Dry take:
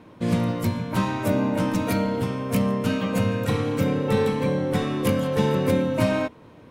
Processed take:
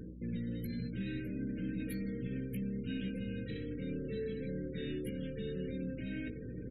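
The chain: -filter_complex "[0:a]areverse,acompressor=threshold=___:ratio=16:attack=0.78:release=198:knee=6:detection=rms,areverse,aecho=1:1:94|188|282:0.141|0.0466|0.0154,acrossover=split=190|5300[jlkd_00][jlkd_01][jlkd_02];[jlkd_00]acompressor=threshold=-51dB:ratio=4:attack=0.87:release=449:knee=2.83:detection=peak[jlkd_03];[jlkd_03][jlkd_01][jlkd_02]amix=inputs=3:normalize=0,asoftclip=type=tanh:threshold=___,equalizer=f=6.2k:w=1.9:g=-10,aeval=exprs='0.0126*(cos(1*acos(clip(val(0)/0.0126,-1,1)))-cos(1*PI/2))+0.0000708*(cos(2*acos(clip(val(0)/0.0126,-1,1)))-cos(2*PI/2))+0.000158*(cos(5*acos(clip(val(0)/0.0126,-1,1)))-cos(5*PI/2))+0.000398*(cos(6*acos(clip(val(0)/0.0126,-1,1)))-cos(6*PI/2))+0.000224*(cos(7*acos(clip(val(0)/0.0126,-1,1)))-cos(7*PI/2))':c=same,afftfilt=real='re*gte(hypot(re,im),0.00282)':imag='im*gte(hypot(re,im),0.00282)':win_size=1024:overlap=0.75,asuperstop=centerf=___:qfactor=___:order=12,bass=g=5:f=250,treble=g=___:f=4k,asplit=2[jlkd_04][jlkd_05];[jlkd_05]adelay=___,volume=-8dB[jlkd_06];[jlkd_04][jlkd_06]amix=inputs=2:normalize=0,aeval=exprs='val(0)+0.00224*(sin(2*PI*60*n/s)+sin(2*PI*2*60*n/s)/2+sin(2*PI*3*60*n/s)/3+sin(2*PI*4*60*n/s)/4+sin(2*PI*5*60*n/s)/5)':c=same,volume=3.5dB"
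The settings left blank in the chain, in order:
-35dB, -38dB, 910, 0.85, 11, 16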